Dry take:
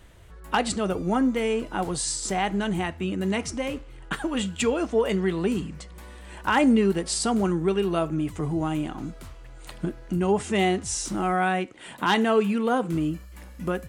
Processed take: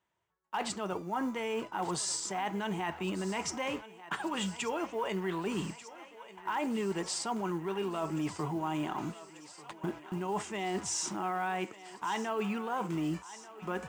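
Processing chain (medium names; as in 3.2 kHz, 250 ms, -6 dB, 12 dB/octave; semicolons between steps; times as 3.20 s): cabinet simulation 200–7800 Hz, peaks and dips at 260 Hz -9 dB, 500 Hz -6 dB, 950 Hz +9 dB, 4.1 kHz -5 dB; gate -40 dBFS, range -28 dB; reverse; compression 12:1, threshold -32 dBFS, peak gain reduction 18 dB; reverse; short-mantissa float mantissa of 4-bit; thinning echo 1189 ms, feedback 76%, high-pass 380 Hz, level -16.5 dB; in parallel at +1 dB: peak limiter -28.5 dBFS, peak gain reduction 8 dB; on the sum: trim -4 dB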